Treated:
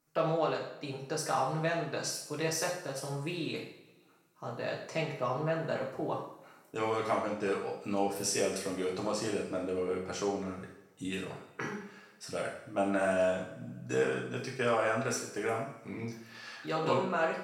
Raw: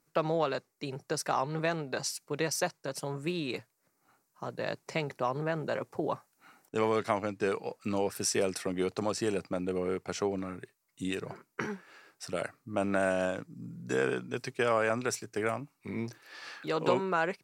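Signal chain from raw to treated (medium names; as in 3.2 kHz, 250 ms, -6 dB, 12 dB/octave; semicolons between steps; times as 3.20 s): two-slope reverb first 0.59 s, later 1.8 s, DRR -3 dB; trim -5.5 dB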